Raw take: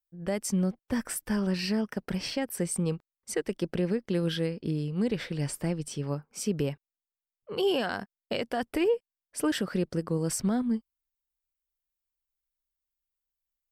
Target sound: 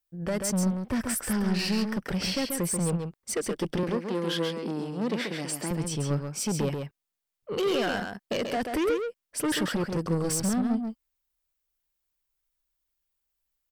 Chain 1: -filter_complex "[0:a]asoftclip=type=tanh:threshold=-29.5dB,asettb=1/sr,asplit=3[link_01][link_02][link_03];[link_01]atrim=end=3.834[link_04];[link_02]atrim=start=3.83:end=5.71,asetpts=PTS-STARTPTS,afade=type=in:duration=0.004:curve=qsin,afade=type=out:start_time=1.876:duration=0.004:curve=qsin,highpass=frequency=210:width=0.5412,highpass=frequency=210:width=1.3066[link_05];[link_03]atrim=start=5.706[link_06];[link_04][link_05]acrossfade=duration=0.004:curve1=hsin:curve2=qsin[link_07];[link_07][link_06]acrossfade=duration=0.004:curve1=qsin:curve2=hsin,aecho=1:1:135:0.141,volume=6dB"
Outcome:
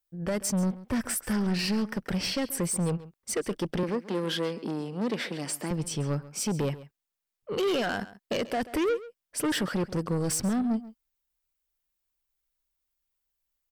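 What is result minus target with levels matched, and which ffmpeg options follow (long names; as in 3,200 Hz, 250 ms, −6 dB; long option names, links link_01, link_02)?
echo-to-direct −11.5 dB
-filter_complex "[0:a]asoftclip=type=tanh:threshold=-29.5dB,asettb=1/sr,asplit=3[link_01][link_02][link_03];[link_01]atrim=end=3.834[link_04];[link_02]atrim=start=3.83:end=5.71,asetpts=PTS-STARTPTS,afade=type=in:duration=0.004:curve=qsin,afade=type=out:start_time=1.876:duration=0.004:curve=qsin,highpass=frequency=210:width=0.5412,highpass=frequency=210:width=1.3066[link_05];[link_03]atrim=start=5.706[link_06];[link_04][link_05]acrossfade=duration=0.004:curve1=hsin:curve2=qsin[link_07];[link_07][link_06]acrossfade=duration=0.004:curve1=qsin:curve2=hsin,aecho=1:1:135:0.531,volume=6dB"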